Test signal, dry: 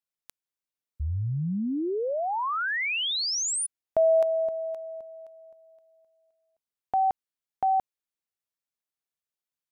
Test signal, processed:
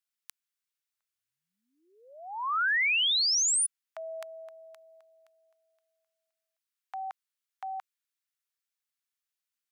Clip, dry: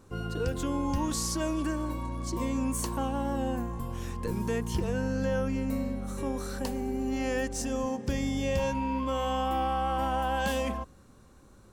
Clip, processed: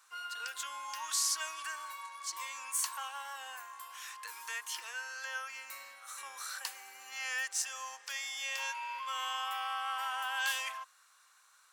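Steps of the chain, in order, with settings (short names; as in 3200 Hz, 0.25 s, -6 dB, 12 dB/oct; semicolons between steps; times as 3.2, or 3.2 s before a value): HPF 1200 Hz 24 dB/oct; gain +2.5 dB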